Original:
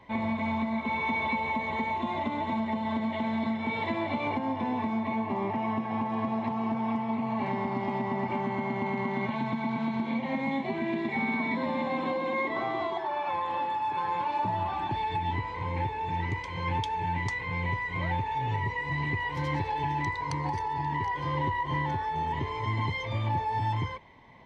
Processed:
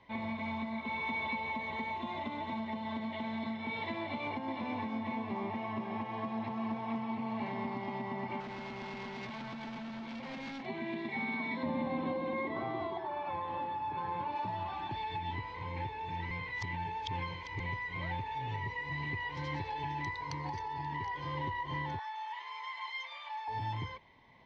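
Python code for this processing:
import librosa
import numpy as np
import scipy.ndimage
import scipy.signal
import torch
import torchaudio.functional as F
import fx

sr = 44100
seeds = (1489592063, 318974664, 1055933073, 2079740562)

y = fx.echo_single(x, sr, ms=459, db=-5.5, at=(4.02, 7.75))
y = fx.clip_hard(y, sr, threshold_db=-32.5, at=(8.4, 10.66))
y = fx.tilt_eq(y, sr, slope=-3.0, at=(11.63, 14.36))
y = fx.highpass(y, sr, hz=830.0, slope=24, at=(21.99, 23.48))
y = fx.edit(y, sr, fx.reverse_span(start_s=16.31, length_s=1.29), tone=tone)
y = scipy.signal.sosfilt(scipy.signal.butter(4, 5600.0, 'lowpass', fs=sr, output='sos'), y)
y = fx.high_shelf(y, sr, hz=2900.0, db=8.5)
y = y * librosa.db_to_amplitude(-8.5)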